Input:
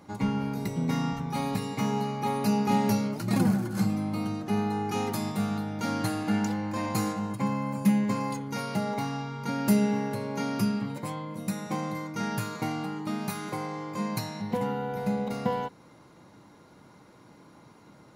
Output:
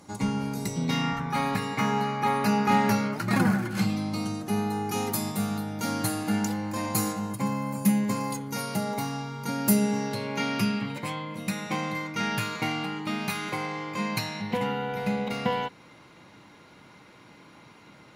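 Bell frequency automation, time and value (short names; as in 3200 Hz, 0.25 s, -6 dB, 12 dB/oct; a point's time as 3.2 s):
bell +11.5 dB 1.5 oct
0.65 s 8000 Hz
1.16 s 1600 Hz
3.54 s 1600 Hz
4.56 s 13000 Hz
9.79 s 13000 Hz
10.28 s 2600 Hz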